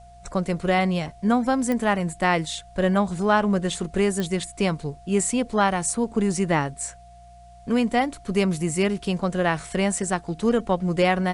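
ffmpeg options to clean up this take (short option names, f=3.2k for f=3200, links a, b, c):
-af "adeclick=t=4,bandreject=f=60.2:t=h:w=4,bandreject=f=120.4:t=h:w=4,bandreject=f=180.6:t=h:w=4,bandreject=f=700:w=30,agate=range=-21dB:threshold=-38dB"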